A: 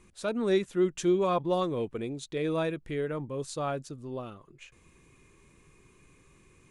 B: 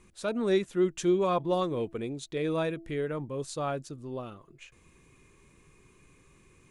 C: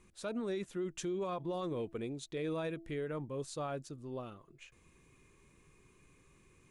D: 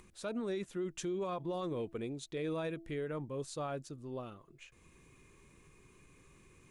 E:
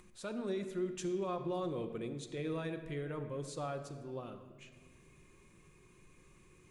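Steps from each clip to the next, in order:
de-hum 331.4 Hz, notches 2
peak limiter -25.5 dBFS, peak gain reduction 10 dB; trim -5 dB
upward compressor, threshold -55 dBFS
reverberation RT60 1.6 s, pre-delay 6 ms, DRR 6 dB; trim -2 dB

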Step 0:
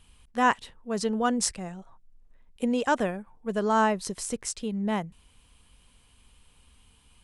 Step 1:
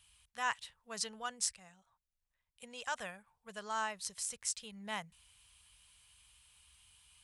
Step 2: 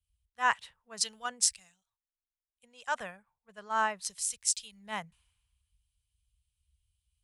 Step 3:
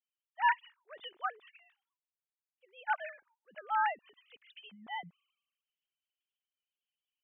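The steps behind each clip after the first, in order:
high-pass 74 Hz 12 dB/octave; amplifier tone stack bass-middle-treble 10-0-10; gain riding within 4 dB 0.5 s; trim -3 dB
three bands expanded up and down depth 100%
formants replaced by sine waves; trim -3 dB

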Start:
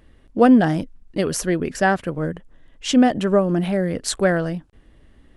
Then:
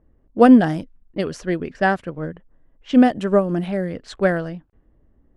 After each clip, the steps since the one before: level-controlled noise filter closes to 840 Hz, open at -15 dBFS; upward expansion 1.5:1, over -28 dBFS; trim +3 dB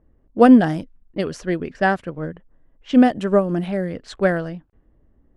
no audible change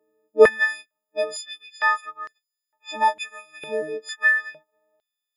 partials quantised in pitch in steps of 6 st; step-sequenced high-pass 2.2 Hz 420–5100 Hz; trim -8.5 dB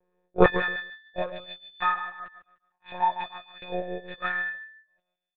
on a send: feedback delay 146 ms, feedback 29%, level -11 dB; on the sum: monotone LPC vocoder at 8 kHz 180 Hz; trim -4.5 dB

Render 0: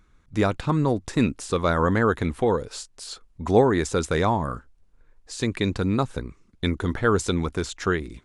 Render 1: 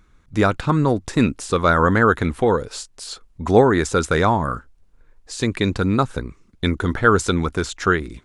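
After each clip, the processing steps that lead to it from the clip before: dynamic bell 1.4 kHz, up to +6 dB, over -41 dBFS, Q 3; trim +4 dB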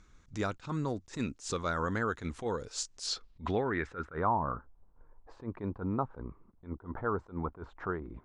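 compression 2.5:1, threshold -30 dBFS, peak gain reduction 15 dB; low-pass sweep 6.6 kHz -> 950 Hz, 3.01–4.36 s; attacks held to a fixed rise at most 230 dB/s; trim -5 dB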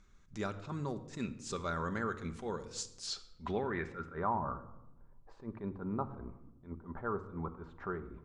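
reverberation RT60 0.90 s, pre-delay 5 ms, DRR 8 dB; trim -5 dB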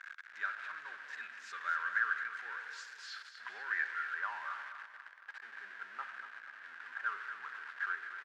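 jump at every zero crossing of -37 dBFS; ladder band-pass 1.7 kHz, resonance 80%; feedback delay 239 ms, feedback 45%, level -10.5 dB; trim +7 dB

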